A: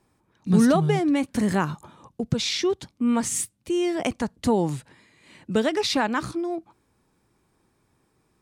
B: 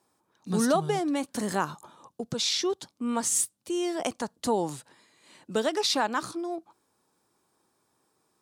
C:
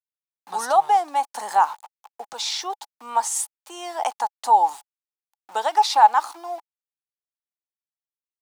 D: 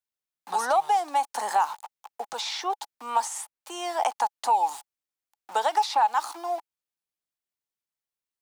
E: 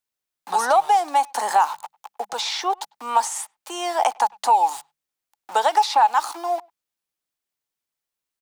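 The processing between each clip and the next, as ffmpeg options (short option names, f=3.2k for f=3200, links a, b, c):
-af "highpass=f=730:p=1,equalizer=f=2.2k:t=o:w=1:g=-9,volume=2dB"
-af "aeval=exprs='val(0)*gte(abs(val(0)),0.00708)':c=same,highpass=f=840:t=q:w=9.6"
-filter_complex "[0:a]acrossover=split=270|2700[a][b][c];[a]acompressor=threshold=-57dB:ratio=4[d];[b]acompressor=threshold=-22dB:ratio=4[e];[c]acompressor=threshold=-38dB:ratio=4[f];[d][e][f]amix=inputs=3:normalize=0,asplit=2[g][h];[h]asoftclip=type=tanh:threshold=-22.5dB,volume=-10.5dB[i];[g][i]amix=inputs=2:normalize=0"
-filter_complex "[0:a]bandreject=f=50:t=h:w=6,bandreject=f=100:t=h:w=6,bandreject=f=150:t=h:w=6,bandreject=f=200:t=h:w=6,asplit=2[a][b];[b]adelay=100,highpass=300,lowpass=3.4k,asoftclip=type=hard:threshold=-21dB,volume=-27dB[c];[a][c]amix=inputs=2:normalize=0,volume=5.5dB"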